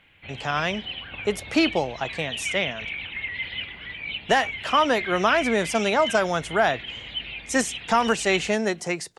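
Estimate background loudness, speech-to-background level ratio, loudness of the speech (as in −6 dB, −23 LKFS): −32.0 LKFS, 8.0 dB, −24.0 LKFS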